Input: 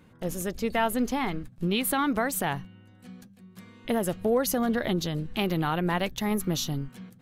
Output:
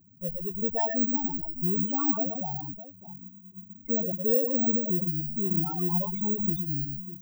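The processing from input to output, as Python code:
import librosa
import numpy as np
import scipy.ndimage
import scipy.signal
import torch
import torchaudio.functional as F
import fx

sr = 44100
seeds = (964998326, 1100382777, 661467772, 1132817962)

y = fx.echo_multitap(x, sr, ms=(111, 122, 126, 127, 607), db=(-10.0, -15.0, -7.0, -13.0, -14.5))
y = fx.spec_topn(y, sr, count=4)
y = (np.kron(y[::2], np.eye(2)[0]) * 2)[:len(y)]
y = y * librosa.db_to_amplitude(-2.0)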